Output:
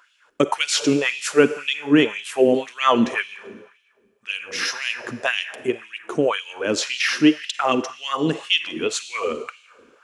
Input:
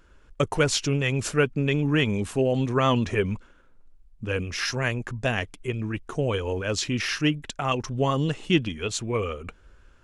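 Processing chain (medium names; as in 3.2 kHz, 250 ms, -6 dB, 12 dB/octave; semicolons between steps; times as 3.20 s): Schroeder reverb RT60 1.4 s, DRR 12 dB; LFO high-pass sine 1.9 Hz 250–3200 Hz; trim +3.5 dB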